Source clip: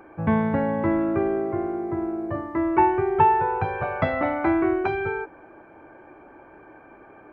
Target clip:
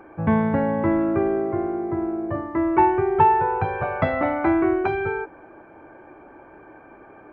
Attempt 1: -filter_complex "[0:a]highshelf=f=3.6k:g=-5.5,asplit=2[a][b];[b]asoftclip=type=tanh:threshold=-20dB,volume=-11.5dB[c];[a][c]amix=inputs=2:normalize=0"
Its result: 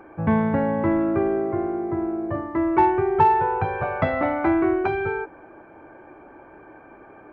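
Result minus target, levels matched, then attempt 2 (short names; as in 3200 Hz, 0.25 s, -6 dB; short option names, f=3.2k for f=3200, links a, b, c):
soft clip: distortion +10 dB
-filter_complex "[0:a]highshelf=f=3.6k:g=-5.5,asplit=2[a][b];[b]asoftclip=type=tanh:threshold=-11.5dB,volume=-11.5dB[c];[a][c]amix=inputs=2:normalize=0"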